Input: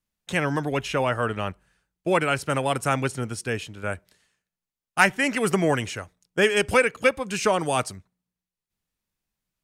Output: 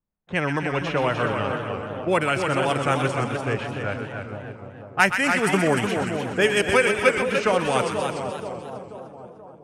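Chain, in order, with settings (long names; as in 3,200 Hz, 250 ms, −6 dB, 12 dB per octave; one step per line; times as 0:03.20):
low-pass that shuts in the quiet parts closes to 1,100 Hz, open at −17.5 dBFS
echo with a time of its own for lows and highs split 990 Hz, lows 482 ms, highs 126 ms, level −7 dB
feedback echo with a swinging delay time 297 ms, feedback 39%, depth 122 cents, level −6 dB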